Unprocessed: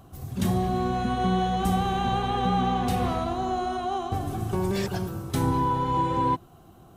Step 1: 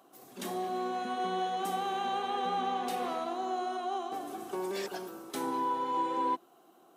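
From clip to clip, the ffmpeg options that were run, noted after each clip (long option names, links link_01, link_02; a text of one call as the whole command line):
ffmpeg -i in.wav -af "highpass=frequency=290:width=0.5412,highpass=frequency=290:width=1.3066,volume=-5.5dB" out.wav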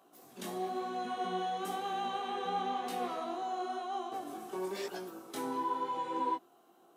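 ffmpeg -i in.wav -af "flanger=delay=16.5:depth=6.2:speed=1" out.wav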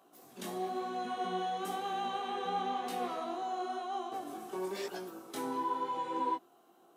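ffmpeg -i in.wav -af anull out.wav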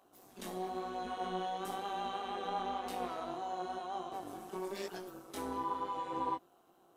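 ffmpeg -i in.wav -af "tremolo=f=190:d=0.621" out.wav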